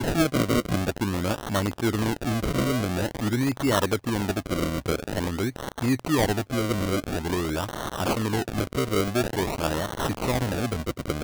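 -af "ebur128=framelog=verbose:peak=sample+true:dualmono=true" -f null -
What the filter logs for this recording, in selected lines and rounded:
Integrated loudness:
  I:         -23.4 LUFS
  Threshold: -33.4 LUFS
Loudness range:
  LRA:         1.2 LU
  Threshold: -43.5 LUFS
  LRA low:   -24.0 LUFS
  LRA high:  -22.8 LUFS
Sample peak:
  Peak:       -8.8 dBFS
True peak:
  Peak:       -7.4 dBFS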